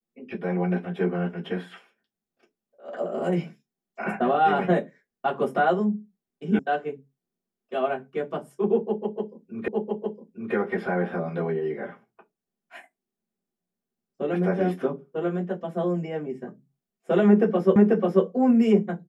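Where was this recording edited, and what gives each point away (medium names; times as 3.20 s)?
6.59 s: sound stops dead
9.68 s: repeat of the last 0.86 s
17.76 s: repeat of the last 0.49 s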